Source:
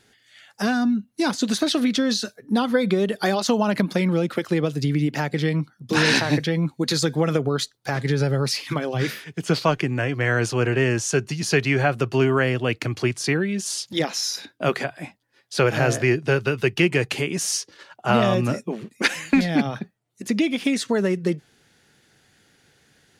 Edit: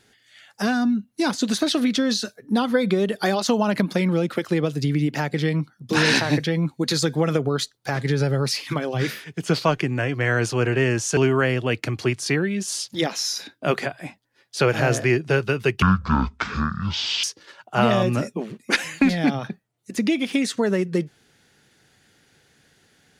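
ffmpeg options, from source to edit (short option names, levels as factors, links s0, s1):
-filter_complex "[0:a]asplit=4[s0][s1][s2][s3];[s0]atrim=end=11.172[s4];[s1]atrim=start=12.148:end=16.804[s5];[s2]atrim=start=16.8:end=17.55,asetpts=PTS-STARTPTS,asetrate=23373,aresample=44100[s6];[s3]atrim=start=17.546[s7];[s4][s5]acrossfade=d=0.004:c1=hsin:c2=hsin[s8];[s8][s6]acrossfade=d=0.004:c1=hsin:c2=hsin[s9];[s9][s7]acrossfade=d=0.004:c1=hsin:c2=hsin"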